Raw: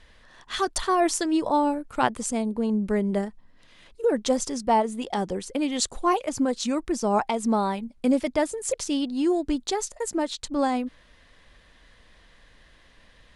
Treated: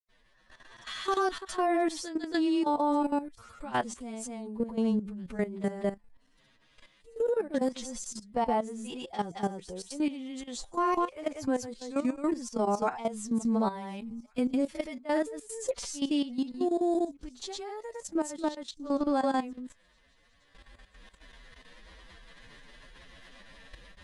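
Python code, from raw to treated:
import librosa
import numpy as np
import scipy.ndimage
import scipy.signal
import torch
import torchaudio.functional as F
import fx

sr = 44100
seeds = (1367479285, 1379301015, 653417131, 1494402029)

y = fx.recorder_agc(x, sr, target_db=-16.5, rise_db_per_s=6.4, max_gain_db=30)
y = fx.granulator(y, sr, seeds[0], grain_ms=119.0, per_s=20.0, spray_ms=93.0, spread_st=0)
y = fx.echo_wet_highpass(y, sr, ms=798, feedback_pct=34, hz=2200.0, wet_db=-23.0)
y = fx.stretch_vocoder(y, sr, factor=1.8)
y = fx.level_steps(y, sr, step_db=13)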